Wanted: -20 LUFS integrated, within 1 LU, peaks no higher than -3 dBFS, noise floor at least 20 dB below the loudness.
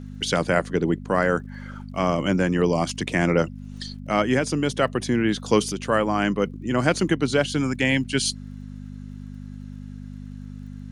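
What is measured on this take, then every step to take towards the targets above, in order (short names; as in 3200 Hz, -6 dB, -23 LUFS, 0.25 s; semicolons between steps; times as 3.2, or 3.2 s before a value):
ticks 37/s; hum 50 Hz; harmonics up to 250 Hz; hum level -34 dBFS; loudness -23.0 LUFS; peak -4.0 dBFS; loudness target -20.0 LUFS
-> de-click; de-hum 50 Hz, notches 5; gain +3 dB; limiter -3 dBFS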